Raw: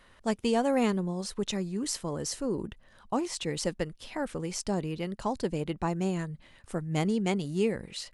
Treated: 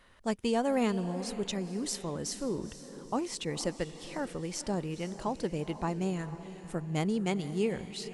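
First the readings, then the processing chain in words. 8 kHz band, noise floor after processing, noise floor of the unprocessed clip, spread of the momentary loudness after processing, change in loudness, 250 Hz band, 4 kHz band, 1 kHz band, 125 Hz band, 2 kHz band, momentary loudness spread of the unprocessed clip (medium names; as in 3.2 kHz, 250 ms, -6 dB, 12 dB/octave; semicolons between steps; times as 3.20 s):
-2.0 dB, -49 dBFS, -59 dBFS, 9 LU, -2.5 dB, -2.5 dB, -2.5 dB, -2.0 dB, -2.5 dB, -2.5 dB, 9 LU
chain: echo that smears into a reverb 478 ms, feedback 44%, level -13 dB; trim -2.5 dB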